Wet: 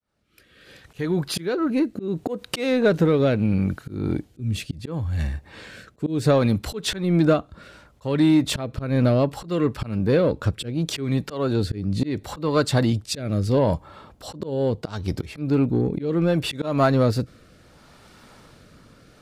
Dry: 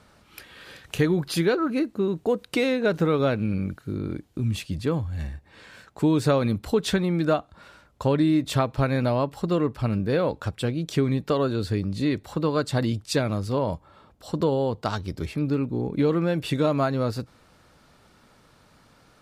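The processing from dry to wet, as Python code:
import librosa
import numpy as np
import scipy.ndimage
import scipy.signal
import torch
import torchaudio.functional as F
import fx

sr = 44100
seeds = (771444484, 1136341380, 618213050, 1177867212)

p1 = fx.fade_in_head(x, sr, length_s=2.03)
p2 = fx.auto_swell(p1, sr, attack_ms=236.0)
p3 = fx.rotary(p2, sr, hz=0.7)
p4 = 10.0 ** (-27.5 / 20.0) * np.tanh(p3 / 10.0 ** (-27.5 / 20.0))
p5 = p3 + F.gain(torch.from_numpy(p4), -4.0).numpy()
y = F.gain(torch.from_numpy(p5), 4.5).numpy()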